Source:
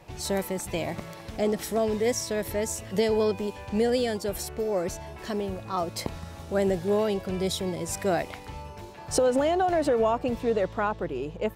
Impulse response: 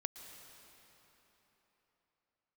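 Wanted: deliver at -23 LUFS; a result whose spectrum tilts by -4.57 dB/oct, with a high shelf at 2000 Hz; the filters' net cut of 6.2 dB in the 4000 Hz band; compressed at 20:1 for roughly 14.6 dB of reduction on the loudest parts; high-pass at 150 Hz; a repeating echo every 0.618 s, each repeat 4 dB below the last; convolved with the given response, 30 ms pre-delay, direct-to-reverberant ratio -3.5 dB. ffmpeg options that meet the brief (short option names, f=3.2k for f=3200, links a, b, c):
-filter_complex "[0:a]highpass=150,highshelf=f=2k:g=-4.5,equalizer=f=4k:t=o:g=-3.5,acompressor=threshold=-34dB:ratio=20,aecho=1:1:618|1236|1854|2472|3090|3708|4326|4944|5562:0.631|0.398|0.25|0.158|0.0994|0.0626|0.0394|0.0249|0.0157,asplit=2[a][b];[1:a]atrim=start_sample=2205,adelay=30[c];[b][c]afir=irnorm=-1:irlink=0,volume=5dB[d];[a][d]amix=inputs=2:normalize=0,volume=9.5dB"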